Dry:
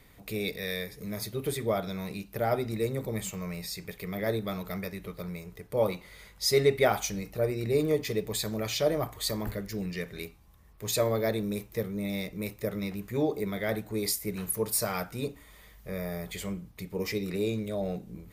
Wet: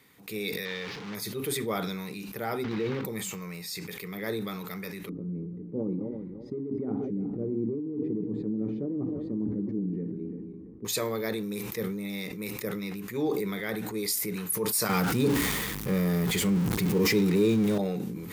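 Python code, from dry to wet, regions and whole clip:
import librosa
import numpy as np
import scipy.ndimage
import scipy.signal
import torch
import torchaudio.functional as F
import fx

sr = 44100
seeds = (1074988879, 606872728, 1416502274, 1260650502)

y = fx.chain(x, sr, fx.delta_mod(bps=32000, step_db=-32.5),
    fx.lowpass(hz=4200.0, slope=12),
    fx.backlash(play_db=-50.5), at=(0.65, 1.15))
y = fx.chain(y, sr, fx.block_float(bits=3),
    fx.air_absorb(metres=270.0),
    fx.pre_swell(db_per_s=23.0), at=(2.64, 3.05))
y = fx.chain(y, sr, fx.reverse_delay_fb(ms=170, feedback_pct=54, wet_db=-14),
    fx.lowpass_res(hz=280.0, q=3.4),
    fx.over_compress(threshold_db=-29.0, ratio=-1.0), at=(5.09, 10.85))
y = fx.chain(y, sr, fx.zero_step(step_db=-36.0),
    fx.low_shelf(hz=410.0, db=11.0),
    fx.env_flatten(amount_pct=50), at=(14.89, 17.78))
y = scipy.signal.sosfilt(scipy.signal.butter(2, 180.0, 'highpass', fs=sr, output='sos'), y)
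y = fx.peak_eq(y, sr, hz=630.0, db=-13.0, octaves=0.36)
y = fx.sustainer(y, sr, db_per_s=26.0)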